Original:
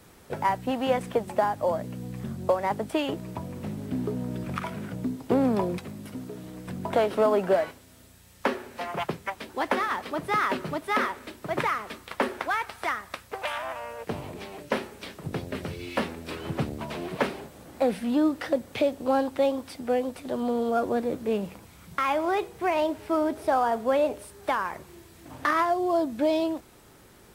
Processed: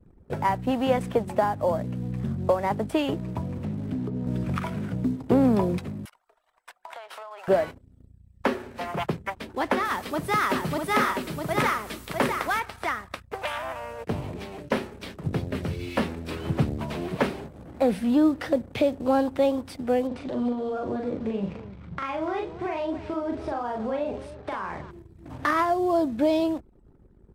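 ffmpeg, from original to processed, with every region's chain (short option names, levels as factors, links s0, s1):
-filter_complex "[0:a]asettb=1/sr,asplit=3[s0][s1][s2];[s0]atrim=end=3.584[s3];[s1]atrim=start=3.58:end=4.27,asetpts=PTS-STARTPTS,afade=t=in:d=0.004:c=qsin,afade=t=out:st=0.686:d=0.004:c=qsin,bandreject=f=60:t=h:w=6,bandreject=f=120:t=h:w=6,bandreject=f=180:t=h:w=6,bandreject=f=240:t=h:w=6,bandreject=f=300:t=h:w=6,bandreject=f=360:t=h:w=6,bandreject=f=420:t=h:w=6,bandreject=f=480:t=h:w=6,bandreject=f=540:t=h:w=6,acrossover=split=160|340[s4][s5][s6];[s4]acompressor=threshold=0.01:ratio=4[s7];[s5]acompressor=threshold=0.0158:ratio=4[s8];[s6]acompressor=threshold=0.00794:ratio=4[s9];[s7][s8][s9]amix=inputs=3:normalize=0[s10];[s2]atrim=start=4.266[s11];[s3][s10]acrossfade=d=0.004:c1=hsin:c2=qsin[s12];[s12][s11]acrossfade=d=0.004:c1=qsin:c2=hsin,asettb=1/sr,asplit=3[s13][s14][s15];[s13]atrim=end=6.054[s16];[s14]atrim=start=6.05:end=7.48,asetpts=PTS-STARTPTS,afade=t=in:d=0.004:c=qsin,afade=t=out:st=1.426:d=0.004:c=qsin,highpass=f=810:w=0.5412,highpass=f=810:w=1.3066,acompressor=threshold=0.0158:ratio=20:attack=3.2:release=140:knee=1:detection=peak[s17];[s15]atrim=start=7.476[s18];[s16][s17]acrossfade=d=0.004:c1=hsin:c2=qsin[s19];[s19][s18]acrossfade=d=0.004:c1=qsin:c2=hsin,asettb=1/sr,asplit=3[s20][s21][s22];[s20]atrim=end=9.854[s23];[s21]atrim=start=9.85:end=12.6,asetpts=PTS-STARTPTS,afade=t=in:d=0.004:c=qsin,afade=t=out:st=2.746:d=0.004:c=qsin,highshelf=f=5100:g=9,aecho=1:1:652:0.596,atrim=end_sample=121275[s24];[s22]atrim=start=12.596[s25];[s23][s24]acrossfade=d=0.004:c1=hsin:c2=qsin[s26];[s26][s25]acrossfade=d=0.004:c1=qsin:c2=hsin,asettb=1/sr,asplit=3[s27][s28][s29];[s27]atrim=end=20.074[s30];[s28]atrim=start=20.07:end=24.91,asetpts=PTS-STARTPTS,afade=t=in:d=0.004:c=qsin,afade=t=out:st=4.836:d=0.004:c=qsin,lowpass=5300,acompressor=threshold=0.0355:ratio=6:attack=3.2:release=140:knee=1:detection=peak,aecho=1:1:41|293:0.708|0.211,atrim=end_sample=213444[s31];[s29]atrim=start=24.906[s32];[s30][s31]acrossfade=d=0.004:c1=hsin:c2=qsin[s33];[s33][s32]acrossfade=d=0.004:c1=qsin:c2=hsin,anlmdn=0.01,lowshelf=f=220:g=9"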